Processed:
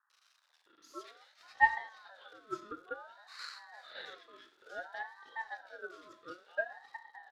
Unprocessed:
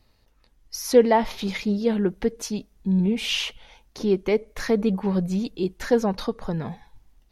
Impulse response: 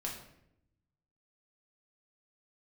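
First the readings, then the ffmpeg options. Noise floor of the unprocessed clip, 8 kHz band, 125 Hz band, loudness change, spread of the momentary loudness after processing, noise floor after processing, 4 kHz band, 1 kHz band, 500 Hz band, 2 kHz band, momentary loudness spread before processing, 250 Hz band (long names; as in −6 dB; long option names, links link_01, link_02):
−63 dBFS, −26.5 dB, −38.0 dB, −14.0 dB, 24 LU, −72 dBFS, −20.5 dB, −7.0 dB, −24.5 dB, −1.0 dB, 12 LU, −33.0 dB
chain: -filter_complex "[0:a]aeval=exprs='val(0)+0.5*0.0376*sgn(val(0))':channel_layout=same,firequalizer=gain_entry='entry(410,0);entry(1200,-25);entry(2500,4)':delay=0.05:min_phase=1,aeval=exprs='0.501*(cos(1*acos(clip(val(0)/0.501,-1,1)))-cos(1*PI/2))+0.126*(cos(2*acos(clip(val(0)/0.501,-1,1)))-cos(2*PI/2))+0.126*(cos(3*acos(clip(val(0)/0.501,-1,1)))-cos(3*PI/2))':channel_layout=same,asplit=3[link_01][link_02][link_03];[link_01]bandpass=frequency=530:width_type=q:width=8,volume=0dB[link_04];[link_02]bandpass=frequency=1840:width_type=q:width=8,volume=-6dB[link_05];[link_03]bandpass=frequency=2480:width_type=q:width=8,volume=-9dB[link_06];[link_04][link_05][link_06]amix=inputs=3:normalize=0,acrossover=split=260|2600[link_07][link_08][link_09];[link_09]adelay=100[link_10];[link_08]adelay=660[link_11];[link_07][link_11][link_10]amix=inputs=3:normalize=0,asplit=2[link_12][link_13];[1:a]atrim=start_sample=2205,afade=type=out:start_time=0.15:duration=0.01,atrim=end_sample=7056,asetrate=36603,aresample=44100[link_14];[link_13][link_14]afir=irnorm=-1:irlink=0,volume=-5dB[link_15];[link_12][link_15]amix=inputs=2:normalize=0,aeval=exprs='val(0)*sin(2*PI*1100*n/s+1100*0.25/0.57*sin(2*PI*0.57*n/s))':channel_layout=same"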